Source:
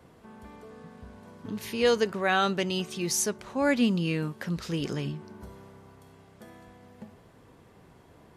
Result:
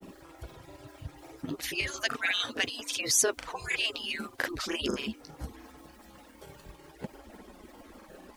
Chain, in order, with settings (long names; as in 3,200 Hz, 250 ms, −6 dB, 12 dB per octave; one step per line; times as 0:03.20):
harmonic-percussive split with one part muted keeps percussive
in parallel at +2 dB: downward compressor, threshold −48 dBFS, peak gain reduction 21 dB
on the sum: background noise white −69 dBFS
granular cloud, spray 32 ms, pitch spread up and down by 0 semitones
level +5 dB